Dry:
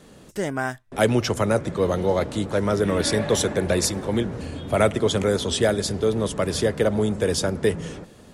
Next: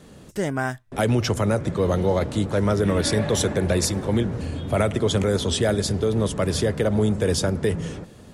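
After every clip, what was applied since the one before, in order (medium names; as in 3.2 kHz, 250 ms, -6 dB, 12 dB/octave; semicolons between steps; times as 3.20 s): peaking EQ 93 Hz +5.5 dB 2.1 oct; peak limiter -11.5 dBFS, peak gain reduction 5.5 dB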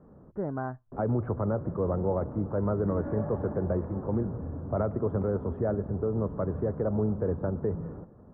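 steep low-pass 1.3 kHz 36 dB/octave; trim -7 dB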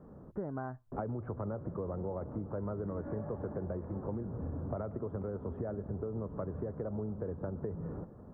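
compression 12:1, threshold -35 dBFS, peak gain reduction 12.5 dB; trim +1 dB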